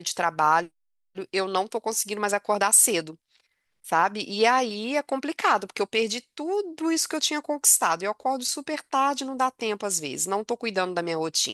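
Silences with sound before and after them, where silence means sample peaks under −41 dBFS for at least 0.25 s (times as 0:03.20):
0:00.67–0:01.16
0:03.14–0:03.84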